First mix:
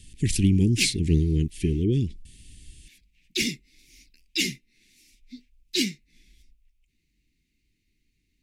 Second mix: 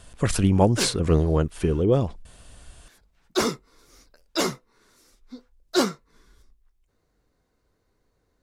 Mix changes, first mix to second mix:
background: add fifteen-band EQ 100 Hz +6 dB, 400 Hz +7 dB, 2500 Hz -11 dB; master: remove inverse Chebyshev band-stop 540–1400 Hz, stop band 40 dB

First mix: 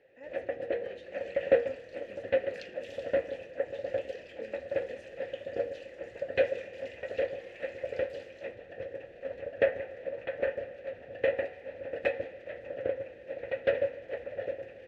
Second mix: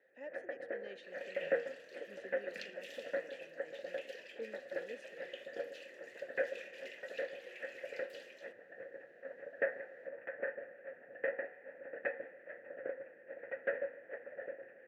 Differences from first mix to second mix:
first sound: add ladder low-pass 1900 Hz, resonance 60%; second sound: remove LPF 8800 Hz 12 dB/oct; master: add HPF 170 Hz 24 dB/oct

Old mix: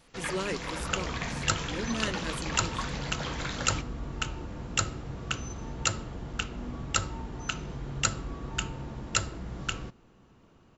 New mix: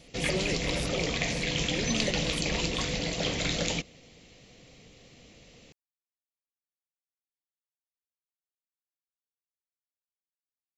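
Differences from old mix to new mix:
first sound +8.0 dB; second sound: muted; master: add band shelf 1200 Hz -13 dB 1.2 oct

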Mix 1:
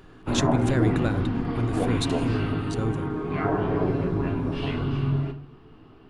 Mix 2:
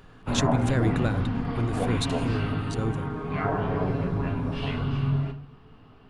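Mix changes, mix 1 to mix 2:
speech: send off; background: add bell 340 Hz -14 dB 0.32 oct

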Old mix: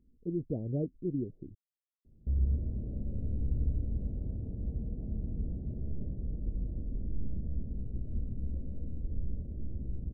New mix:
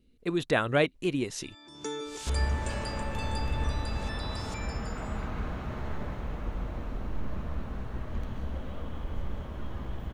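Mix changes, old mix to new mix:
first sound: unmuted; master: remove Gaussian blur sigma 23 samples

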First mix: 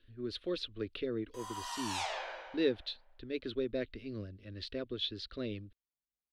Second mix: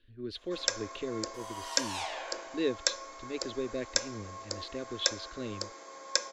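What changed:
first sound: unmuted; master: add notch 1300 Hz, Q 12

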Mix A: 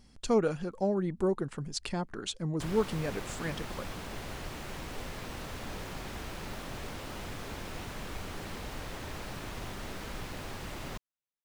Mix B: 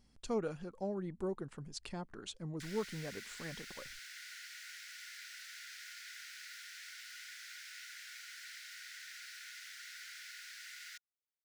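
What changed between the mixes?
speech -9.5 dB; background: add rippled Chebyshev high-pass 1400 Hz, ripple 6 dB

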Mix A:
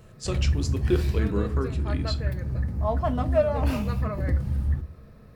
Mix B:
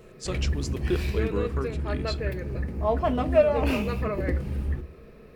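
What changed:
speech: send -10.0 dB; background: add fifteen-band EQ 100 Hz -11 dB, 400 Hz +11 dB, 2500 Hz +9 dB

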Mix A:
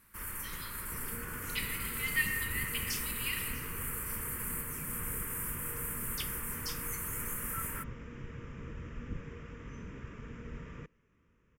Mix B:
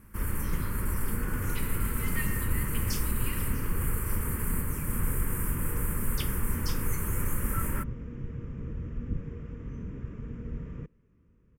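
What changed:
first sound +9.0 dB; master: add tilt shelf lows +8.5 dB, about 640 Hz

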